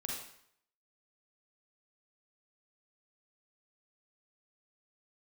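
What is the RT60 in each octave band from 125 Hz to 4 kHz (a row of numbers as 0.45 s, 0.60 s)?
0.65 s, 0.65 s, 0.65 s, 0.70 s, 0.65 s, 0.60 s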